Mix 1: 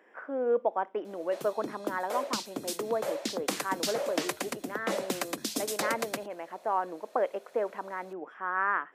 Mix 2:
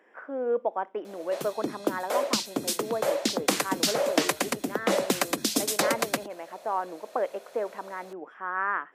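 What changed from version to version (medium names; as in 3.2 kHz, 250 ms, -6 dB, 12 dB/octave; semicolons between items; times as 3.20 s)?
background +7.0 dB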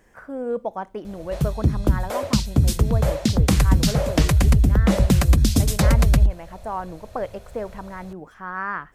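speech: remove Savitzky-Golay filter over 25 samples; master: remove high-pass 300 Hz 24 dB/octave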